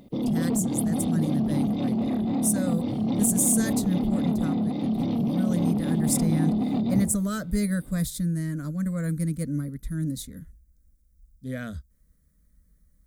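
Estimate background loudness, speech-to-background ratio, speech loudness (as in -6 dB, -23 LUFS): -26.5 LUFS, -2.0 dB, -28.5 LUFS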